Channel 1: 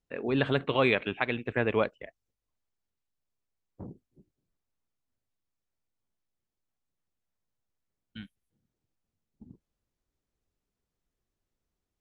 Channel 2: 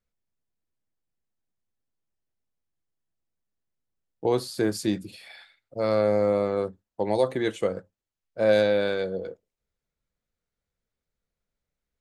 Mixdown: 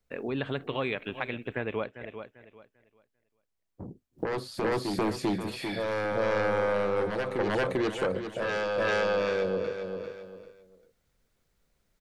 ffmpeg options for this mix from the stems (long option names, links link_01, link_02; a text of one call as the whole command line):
ffmpeg -i stem1.wav -i stem2.wav -filter_complex "[0:a]volume=1dB,asplit=3[link_01][link_02][link_03];[link_02]volume=-16dB[link_04];[1:a]acrossover=split=3400[link_05][link_06];[link_06]acompressor=threshold=-50dB:ratio=4:attack=1:release=60[link_07];[link_05][link_07]amix=inputs=2:normalize=0,aeval=exprs='0.355*sin(PI/2*3.98*val(0)/0.355)':channel_layout=same,volume=-1dB,asplit=3[link_08][link_09][link_10];[link_08]atrim=end=1.35,asetpts=PTS-STARTPTS,afade=type=out:start_time=1.346:duration=0.004:curve=hsin[link_11];[link_09]atrim=start=1.35:end=4.13,asetpts=PTS-STARTPTS,volume=0[link_12];[link_10]atrim=start=4.13,asetpts=PTS-STARTPTS,afade=type=in:duration=0.004:curve=hsin[link_13];[link_11][link_12][link_13]concat=n=3:v=0:a=1,asplit=2[link_14][link_15];[link_15]volume=-4dB[link_16];[link_03]apad=whole_len=529462[link_17];[link_14][link_17]sidechaingate=range=-11dB:threshold=-58dB:ratio=16:detection=peak[link_18];[link_04][link_16]amix=inputs=2:normalize=0,aecho=0:1:395|790|1185|1580:1|0.24|0.0576|0.0138[link_19];[link_01][link_18][link_19]amix=inputs=3:normalize=0,acompressor=threshold=-33dB:ratio=2" out.wav